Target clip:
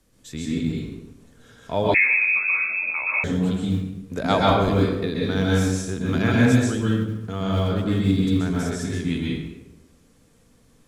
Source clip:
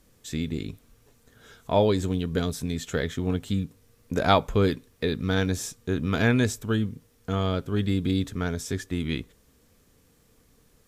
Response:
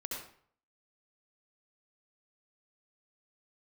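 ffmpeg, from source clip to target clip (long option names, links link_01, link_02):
-filter_complex "[1:a]atrim=start_sample=2205,asetrate=22932,aresample=44100[link_01];[0:a][link_01]afir=irnorm=-1:irlink=0,acrossover=split=100|920[link_02][link_03][link_04];[link_02]acrusher=bits=5:mode=log:mix=0:aa=0.000001[link_05];[link_05][link_03][link_04]amix=inputs=3:normalize=0,asettb=1/sr,asplit=3[link_06][link_07][link_08];[link_06]atrim=end=1.944[link_09];[link_07]atrim=start=1.94:end=3.24,asetpts=PTS-STARTPTS,afade=type=in:duration=0.004:curve=qsin,afade=type=out:start_time=1.296:duration=0.004:curve=qsin,lowpass=frequency=2300:width_type=q:width=0.5098,lowpass=frequency=2300:width_type=q:width=0.6013,lowpass=frequency=2300:width_type=q:width=0.9,lowpass=frequency=2300:width_type=q:width=2.563,afreqshift=-2700[link_10];[link_08]atrim=start=3.236[link_11];[link_09][link_10]acrossfade=duration=0.004:curve1=hsin:curve2=qsin[link_12];[link_12][link_11]acrossfade=duration=0.004:curve1=qsin:curve2=hsin,volume=-2dB"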